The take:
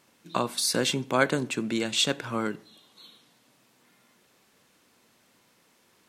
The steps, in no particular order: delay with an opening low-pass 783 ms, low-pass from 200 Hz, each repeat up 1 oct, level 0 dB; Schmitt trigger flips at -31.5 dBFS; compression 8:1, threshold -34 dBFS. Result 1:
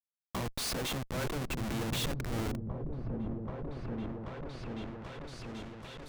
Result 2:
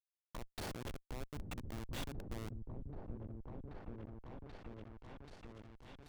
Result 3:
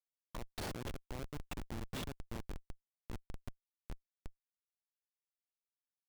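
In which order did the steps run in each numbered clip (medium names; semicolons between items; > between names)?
Schmitt trigger > compression > delay with an opening low-pass; compression > Schmitt trigger > delay with an opening low-pass; compression > delay with an opening low-pass > Schmitt trigger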